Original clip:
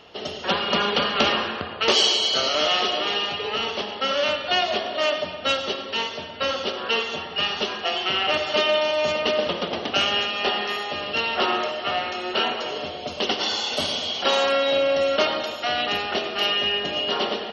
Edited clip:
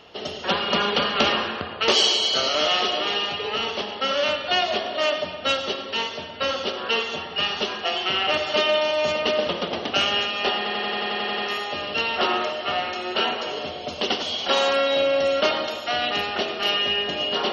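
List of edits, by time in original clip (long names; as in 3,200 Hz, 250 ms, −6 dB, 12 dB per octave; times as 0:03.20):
0:10.57: stutter 0.09 s, 10 plays
0:13.41–0:13.98: remove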